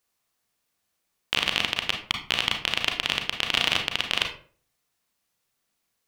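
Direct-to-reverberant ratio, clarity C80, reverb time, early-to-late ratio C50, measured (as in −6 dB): 3.0 dB, 12.5 dB, 0.45 s, 7.5 dB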